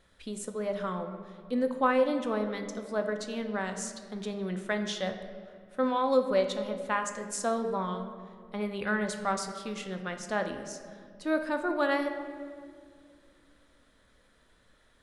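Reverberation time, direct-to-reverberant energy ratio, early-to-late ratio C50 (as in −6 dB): 2.1 s, 5.5 dB, 8.0 dB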